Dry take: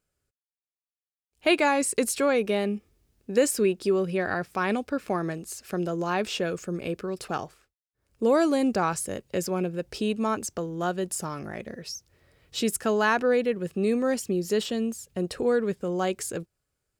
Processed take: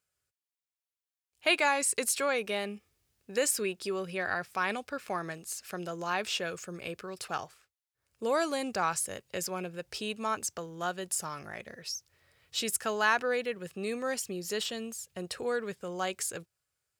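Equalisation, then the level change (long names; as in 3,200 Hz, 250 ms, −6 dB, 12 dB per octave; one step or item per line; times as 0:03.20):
high-pass filter 99 Hz 12 dB per octave
parametric band 260 Hz −13 dB 2.4 octaves
0.0 dB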